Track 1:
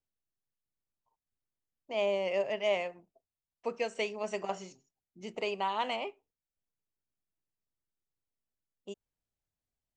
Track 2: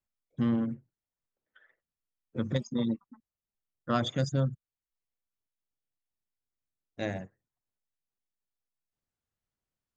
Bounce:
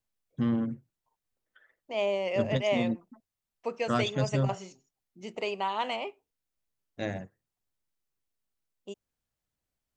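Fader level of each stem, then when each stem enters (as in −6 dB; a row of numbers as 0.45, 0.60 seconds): +1.5, 0.0 decibels; 0.00, 0.00 seconds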